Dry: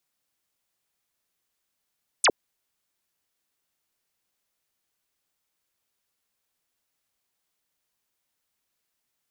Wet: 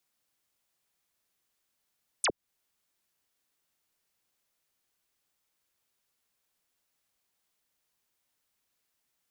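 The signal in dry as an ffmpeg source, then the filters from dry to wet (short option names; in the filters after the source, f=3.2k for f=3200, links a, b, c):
-f lavfi -i "aevalsrc='0.168*clip(t/0.002,0,1)*clip((0.06-t)/0.002,0,1)*sin(2*PI*10000*0.06/log(300/10000)*(exp(log(300/10000)*t/0.06)-1))':d=0.06:s=44100"
-filter_complex "[0:a]acrossover=split=180[a][b];[b]acompressor=threshold=-34dB:ratio=2[c];[a][c]amix=inputs=2:normalize=0"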